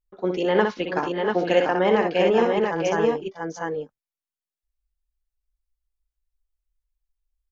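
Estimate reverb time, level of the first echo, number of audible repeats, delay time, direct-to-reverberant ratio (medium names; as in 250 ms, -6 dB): no reverb, -5.5 dB, 3, 61 ms, no reverb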